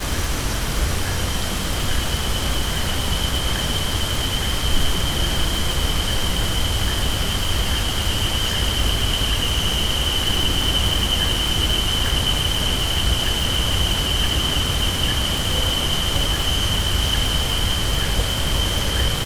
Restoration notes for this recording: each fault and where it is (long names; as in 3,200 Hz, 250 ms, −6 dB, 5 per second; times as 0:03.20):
surface crackle 200 per second −24 dBFS